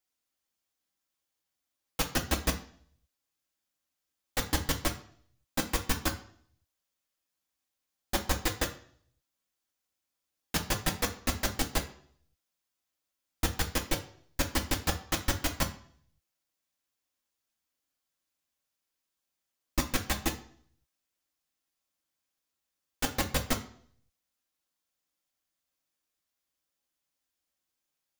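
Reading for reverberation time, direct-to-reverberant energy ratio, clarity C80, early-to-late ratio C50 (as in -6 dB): 0.55 s, 2.0 dB, 16.0 dB, 12.5 dB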